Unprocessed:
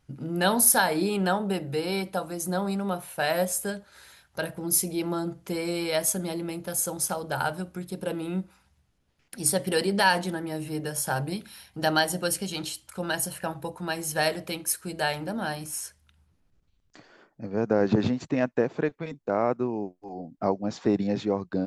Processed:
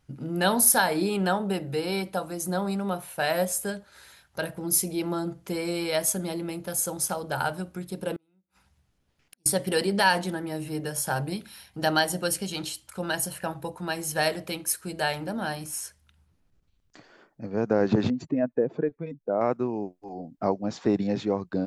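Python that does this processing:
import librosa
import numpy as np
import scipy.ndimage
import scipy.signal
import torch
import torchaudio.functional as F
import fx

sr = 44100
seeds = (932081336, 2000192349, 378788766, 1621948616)

y = fx.gate_flip(x, sr, shuts_db=-32.0, range_db=-38, at=(8.16, 9.46))
y = fx.spec_expand(y, sr, power=1.6, at=(18.1, 19.41))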